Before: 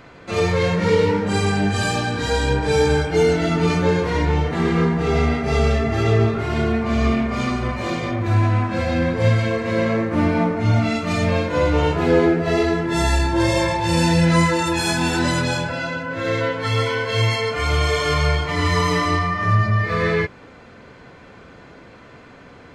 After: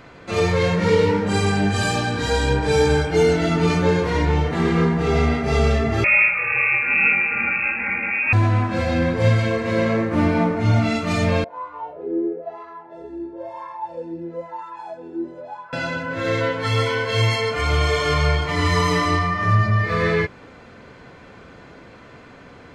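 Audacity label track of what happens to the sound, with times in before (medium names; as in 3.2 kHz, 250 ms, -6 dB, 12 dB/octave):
6.040000	8.330000	frequency inversion carrier 2.6 kHz
11.440000	15.730000	wah-wah 1 Hz 340–1100 Hz, Q 10
17.610000	18.420000	treble shelf 7.2 kHz -5.5 dB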